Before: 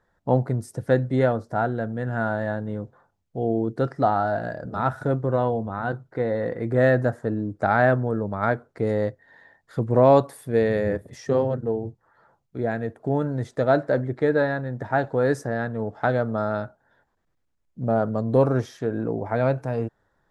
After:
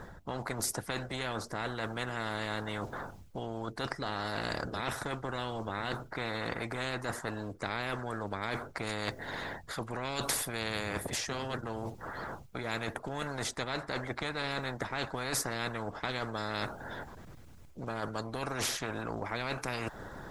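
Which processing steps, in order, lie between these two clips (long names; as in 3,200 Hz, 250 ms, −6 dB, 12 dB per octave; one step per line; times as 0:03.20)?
in parallel at +2 dB: brickwall limiter −13 dBFS, peak gain reduction 8 dB
on the sum: harmonic and percussive parts rebalanced harmonic −7 dB
reversed playback
downward compressor 12 to 1, threshold −30 dBFS, peak gain reduction 19 dB
reversed playback
low-shelf EQ 190 Hz +10.5 dB
notch filter 1,800 Hz, Q 19
every bin compressed towards the loudest bin 4 to 1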